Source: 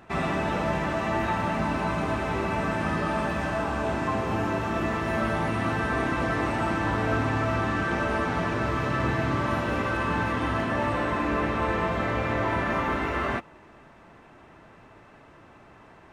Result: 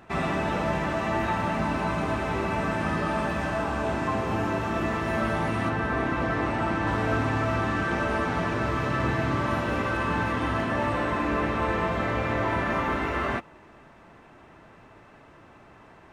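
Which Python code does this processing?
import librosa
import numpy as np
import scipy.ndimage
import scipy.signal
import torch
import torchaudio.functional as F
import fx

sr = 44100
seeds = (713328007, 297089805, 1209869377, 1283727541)

y = fx.high_shelf(x, sr, hz=fx.line((5.68, 4400.0), (6.86, 7700.0)), db=-10.5, at=(5.68, 6.86), fade=0.02)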